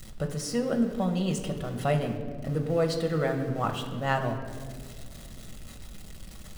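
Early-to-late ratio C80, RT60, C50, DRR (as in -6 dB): 9.5 dB, 2.1 s, 8.0 dB, 4.0 dB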